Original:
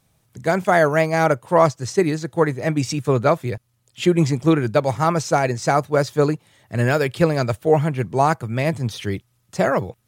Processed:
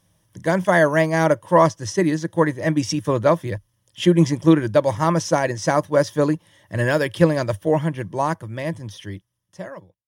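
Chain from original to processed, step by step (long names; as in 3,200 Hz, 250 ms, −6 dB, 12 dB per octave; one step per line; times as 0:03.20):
fade-out on the ending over 2.79 s
EQ curve with evenly spaced ripples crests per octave 1.2, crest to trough 9 dB
level −1 dB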